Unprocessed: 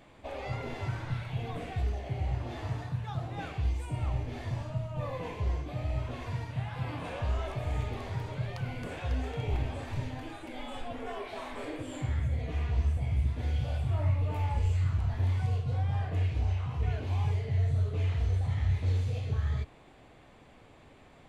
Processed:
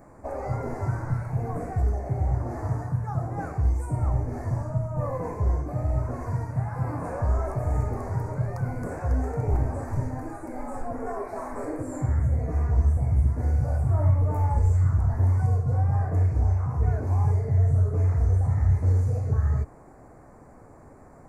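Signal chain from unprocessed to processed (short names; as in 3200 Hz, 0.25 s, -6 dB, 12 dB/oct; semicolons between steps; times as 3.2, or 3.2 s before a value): Butterworth band-stop 3200 Hz, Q 0.6; gain +7 dB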